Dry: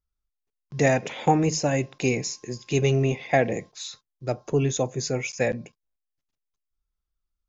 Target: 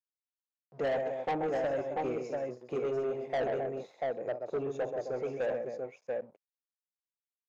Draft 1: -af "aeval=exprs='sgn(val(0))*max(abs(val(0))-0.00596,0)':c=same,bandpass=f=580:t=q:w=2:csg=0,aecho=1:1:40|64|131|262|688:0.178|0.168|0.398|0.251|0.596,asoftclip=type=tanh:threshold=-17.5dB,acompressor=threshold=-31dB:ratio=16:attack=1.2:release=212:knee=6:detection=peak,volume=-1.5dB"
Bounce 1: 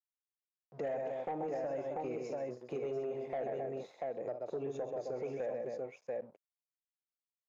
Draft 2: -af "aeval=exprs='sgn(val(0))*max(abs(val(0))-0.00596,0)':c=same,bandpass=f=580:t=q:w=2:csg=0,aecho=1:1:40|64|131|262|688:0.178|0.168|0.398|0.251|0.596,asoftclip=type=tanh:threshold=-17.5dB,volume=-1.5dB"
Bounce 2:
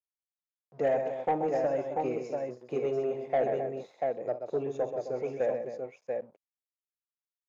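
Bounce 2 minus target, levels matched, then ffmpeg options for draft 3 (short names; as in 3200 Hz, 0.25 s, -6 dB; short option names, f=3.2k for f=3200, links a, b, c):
soft clip: distortion -9 dB
-af "aeval=exprs='sgn(val(0))*max(abs(val(0))-0.00596,0)':c=same,bandpass=f=580:t=q:w=2:csg=0,aecho=1:1:40|64|131|262|688:0.178|0.168|0.398|0.251|0.596,asoftclip=type=tanh:threshold=-25.5dB,volume=-1.5dB"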